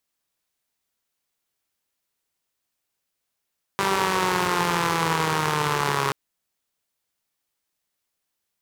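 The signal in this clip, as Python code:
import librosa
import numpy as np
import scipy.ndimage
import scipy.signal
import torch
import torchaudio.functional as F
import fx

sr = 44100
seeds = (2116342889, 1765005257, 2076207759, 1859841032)

y = fx.engine_four_rev(sr, seeds[0], length_s=2.33, rpm=5900, resonances_hz=(160.0, 410.0, 940.0), end_rpm=4100)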